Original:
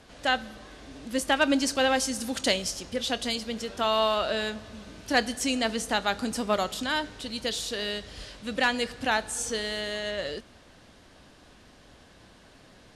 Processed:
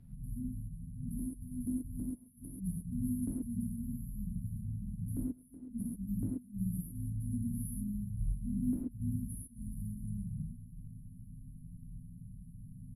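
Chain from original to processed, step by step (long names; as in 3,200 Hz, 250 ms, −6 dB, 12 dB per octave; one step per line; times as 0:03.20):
brick-wall band-stop 250–9,900 Hz
high-shelf EQ 2,400 Hz +7 dB
comb filter 7.1 ms, depth 78%
gate with flip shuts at −28 dBFS, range −26 dB
high-frequency loss of the air 77 metres
reverb whose tail is shaped and stops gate 160 ms flat, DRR −7 dB
level +1.5 dB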